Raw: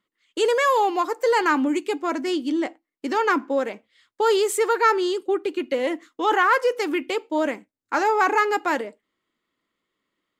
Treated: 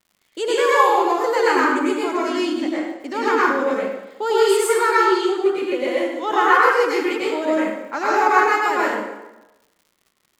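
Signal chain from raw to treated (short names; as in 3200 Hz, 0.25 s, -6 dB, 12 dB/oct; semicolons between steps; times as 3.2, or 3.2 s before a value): vibrato 0.72 Hz 23 cents; plate-style reverb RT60 1 s, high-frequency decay 0.75×, pre-delay 85 ms, DRR -7.5 dB; crackle 170/s -41 dBFS; gain -4 dB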